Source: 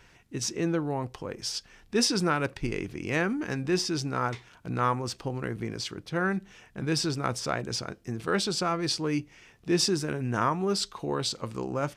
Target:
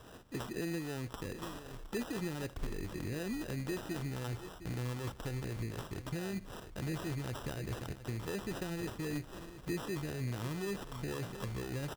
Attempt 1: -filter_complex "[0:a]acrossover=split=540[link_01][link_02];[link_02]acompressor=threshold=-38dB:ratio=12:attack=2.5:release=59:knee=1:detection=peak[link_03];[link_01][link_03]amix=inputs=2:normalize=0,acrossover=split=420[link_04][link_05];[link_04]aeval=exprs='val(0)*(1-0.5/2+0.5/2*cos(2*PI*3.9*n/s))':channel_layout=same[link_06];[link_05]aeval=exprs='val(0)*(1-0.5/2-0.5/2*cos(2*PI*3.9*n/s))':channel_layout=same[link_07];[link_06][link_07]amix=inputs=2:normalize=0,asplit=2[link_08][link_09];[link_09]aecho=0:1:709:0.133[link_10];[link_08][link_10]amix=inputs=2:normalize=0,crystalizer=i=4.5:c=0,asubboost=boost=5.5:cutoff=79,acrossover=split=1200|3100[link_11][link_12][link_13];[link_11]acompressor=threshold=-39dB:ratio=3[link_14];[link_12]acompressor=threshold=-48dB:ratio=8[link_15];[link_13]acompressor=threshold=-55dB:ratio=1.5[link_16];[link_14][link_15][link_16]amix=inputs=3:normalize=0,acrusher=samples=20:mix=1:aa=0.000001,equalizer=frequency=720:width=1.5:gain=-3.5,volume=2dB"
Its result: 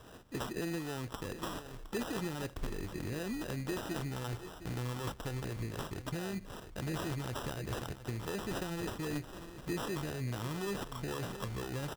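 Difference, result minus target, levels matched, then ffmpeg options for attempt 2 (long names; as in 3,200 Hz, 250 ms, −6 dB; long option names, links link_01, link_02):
downward compressor: peak gain reduction −8 dB
-filter_complex "[0:a]acrossover=split=540[link_01][link_02];[link_02]acompressor=threshold=-46.5dB:ratio=12:attack=2.5:release=59:knee=1:detection=peak[link_03];[link_01][link_03]amix=inputs=2:normalize=0,acrossover=split=420[link_04][link_05];[link_04]aeval=exprs='val(0)*(1-0.5/2+0.5/2*cos(2*PI*3.9*n/s))':channel_layout=same[link_06];[link_05]aeval=exprs='val(0)*(1-0.5/2-0.5/2*cos(2*PI*3.9*n/s))':channel_layout=same[link_07];[link_06][link_07]amix=inputs=2:normalize=0,asplit=2[link_08][link_09];[link_09]aecho=0:1:709:0.133[link_10];[link_08][link_10]amix=inputs=2:normalize=0,crystalizer=i=4.5:c=0,asubboost=boost=5.5:cutoff=79,acrossover=split=1200|3100[link_11][link_12][link_13];[link_11]acompressor=threshold=-39dB:ratio=3[link_14];[link_12]acompressor=threshold=-48dB:ratio=8[link_15];[link_13]acompressor=threshold=-55dB:ratio=1.5[link_16];[link_14][link_15][link_16]amix=inputs=3:normalize=0,acrusher=samples=20:mix=1:aa=0.000001,equalizer=frequency=720:width=1.5:gain=-3.5,volume=2dB"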